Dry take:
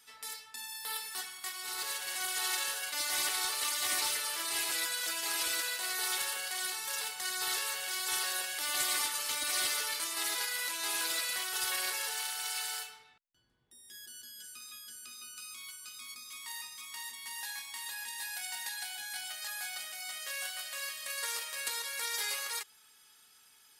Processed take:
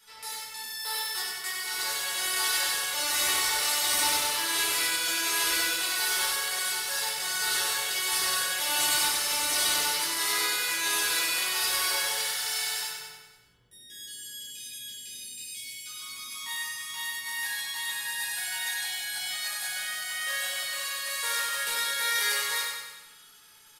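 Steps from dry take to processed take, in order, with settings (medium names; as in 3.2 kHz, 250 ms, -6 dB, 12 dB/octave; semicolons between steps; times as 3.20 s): spectral selection erased 13.68–15.86 s, 640–1600 Hz; feedback delay 96 ms, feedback 55%, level -4 dB; simulated room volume 520 m³, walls furnished, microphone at 4.7 m; trim -1 dB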